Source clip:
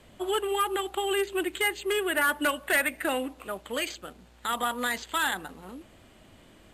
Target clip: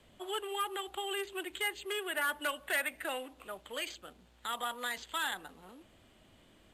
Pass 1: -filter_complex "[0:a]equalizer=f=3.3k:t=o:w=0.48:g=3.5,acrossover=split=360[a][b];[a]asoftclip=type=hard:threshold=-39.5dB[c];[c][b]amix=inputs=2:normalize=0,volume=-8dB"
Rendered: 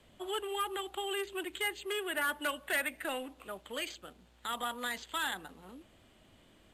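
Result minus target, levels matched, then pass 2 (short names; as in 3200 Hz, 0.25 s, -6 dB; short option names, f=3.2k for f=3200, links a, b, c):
hard clip: distortion -6 dB
-filter_complex "[0:a]equalizer=f=3.3k:t=o:w=0.48:g=3.5,acrossover=split=360[a][b];[a]asoftclip=type=hard:threshold=-50dB[c];[c][b]amix=inputs=2:normalize=0,volume=-8dB"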